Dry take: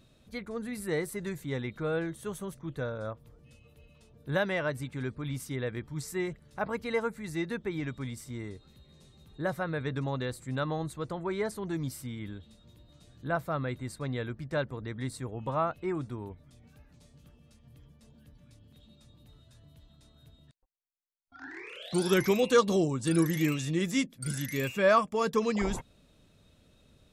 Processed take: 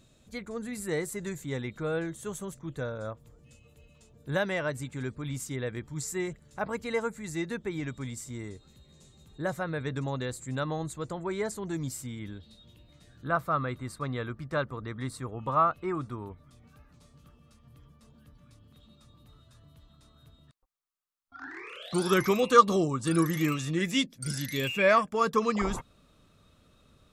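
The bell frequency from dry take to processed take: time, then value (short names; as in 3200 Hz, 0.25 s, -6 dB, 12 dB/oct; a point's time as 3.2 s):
bell +11.5 dB 0.35 oct
12.16 s 7200 Hz
13.32 s 1200 Hz
23.72 s 1200 Hz
24.18 s 6600 Hz
25.26 s 1200 Hz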